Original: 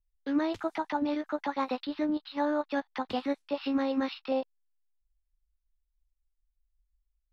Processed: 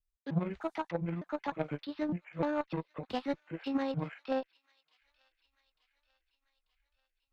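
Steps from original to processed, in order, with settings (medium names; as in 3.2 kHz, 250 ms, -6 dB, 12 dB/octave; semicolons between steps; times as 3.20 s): pitch shift switched off and on -9.5 st, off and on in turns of 303 ms; Chebyshev shaper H 3 -15 dB, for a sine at -18 dBFS; feedback echo behind a high-pass 890 ms, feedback 56%, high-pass 2.5 kHz, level -20.5 dB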